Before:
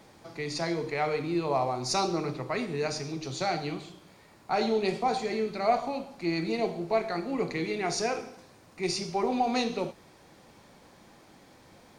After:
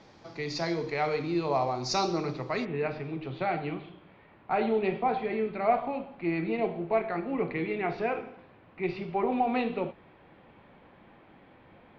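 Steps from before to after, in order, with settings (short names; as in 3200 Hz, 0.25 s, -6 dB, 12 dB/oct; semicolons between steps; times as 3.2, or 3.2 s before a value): steep low-pass 6100 Hz 36 dB/oct, from 2.64 s 3100 Hz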